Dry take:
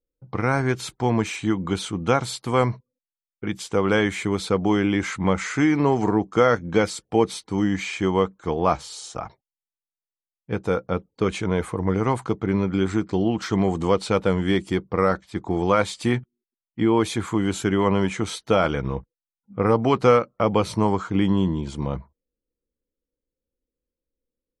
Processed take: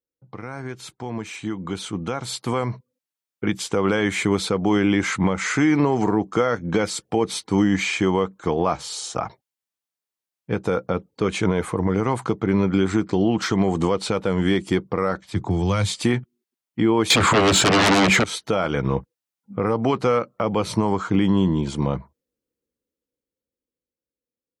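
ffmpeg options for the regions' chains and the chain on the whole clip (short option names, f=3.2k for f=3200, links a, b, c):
-filter_complex "[0:a]asettb=1/sr,asplit=3[a][b][c];[a]atrim=end=15.284[d];[b]atrim=start=15.28:end=15.96,asetpts=PTS-STARTPTS,afade=t=in:d=0.004:c=qsin,afade=t=out:st=0.676:d=0.004:c=qsin,equalizer=f=110:w=1.3:g=9,acrossover=split=150|3000[e][f][g];[f]acompressor=threshold=-32dB:ratio=3:attack=3.2:release=140:knee=2.83:detection=peak[h];[e][h][g]amix=inputs=3:normalize=0[i];[c]atrim=start=15.956[j];[d][i]acrossfade=d=0.004:c1=hsin:c2=qsin[k];[k][j]acrossfade=d=0.004:c1=qsin:c2=hsin,asettb=1/sr,asplit=3[l][m][n];[l]atrim=end=17.104[o];[m]atrim=start=17.1:end=18.24,asetpts=PTS-STARTPTS,afade=t=in:d=0.004:c=qsin,afade=t=out:st=1.136:d=0.004:c=qsin,lowpass=f=7.5k:w=0.5412,lowpass=f=7.5k:w=1.3066,bandreject=f=5.9k:w=6.4,aeval=exprs='0.398*sin(PI/2*7.08*val(0)/0.398)':c=same[p];[n]atrim=start=18.236[q];[o][p]acrossfade=d=0.004:c1=hsin:c2=qsin[r];[r][q]acrossfade=d=0.004:c1=qsin:c2=hsin,highpass=92,alimiter=limit=-15.5dB:level=0:latency=1:release=172,dynaudnorm=f=270:g=17:m=12.5dB,volume=-5.5dB"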